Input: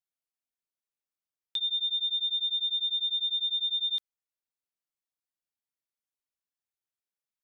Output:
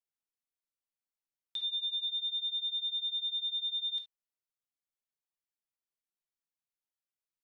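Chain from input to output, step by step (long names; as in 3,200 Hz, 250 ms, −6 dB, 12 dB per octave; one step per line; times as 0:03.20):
on a send at −5 dB: convolution reverb, pre-delay 6 ms
0:01.59–0:02.08: on the sum: multiband upward and downward compressor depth 40%
level −7 dB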